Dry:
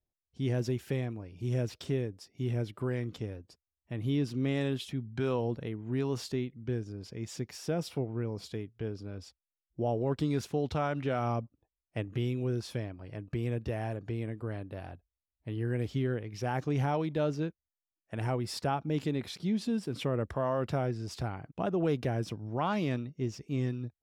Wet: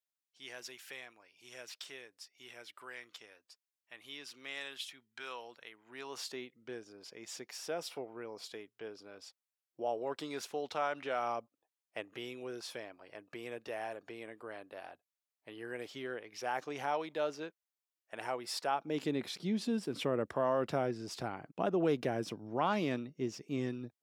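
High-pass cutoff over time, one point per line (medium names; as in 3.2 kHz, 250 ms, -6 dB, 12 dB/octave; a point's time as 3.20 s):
5.71 s 1.3 kHz
6.44 s 580 Hz
18.69 s 580 Hz
19.13 s 230 Hz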